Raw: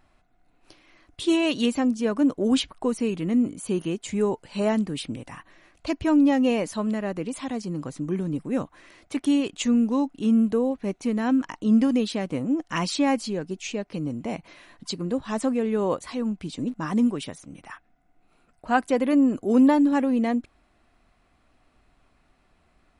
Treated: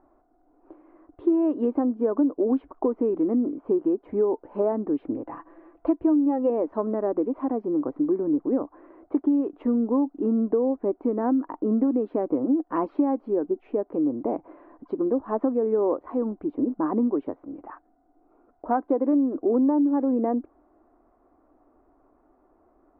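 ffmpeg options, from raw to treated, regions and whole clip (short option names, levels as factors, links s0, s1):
-filter_complex "[0:a]asettb=1/sr,asplit=3[s0][s1][s2];[s0]atrim=end=5.264[s3];[s1]atrim=start=5.26:end=6.5,asetpts=PTS-STARTPTS,afade=t=in:d=0.004:c=qsin,afade=t=out:st=1.236:d=0.004:c=qsin,highshelf=f=2500:g=9.5,aecho=1:1:6:0.49,atrim=end_sample=54684[s4];[s2]atrim=start=6.496[s5];[s3][s4]acrossfade=d=0.004:c1=hsin:c2=qsin[s6];[s6][s5]acrossfade=d=0.004:c1=qsin:c2=hsin,lowpass=f=1100:w=0.5412,lowpass=f=1100:w=1.3066,lowshelf=f=230:t=q:w=3:g=-10,acompressor=threshold=0.0631:ratio=6,volume=1.68"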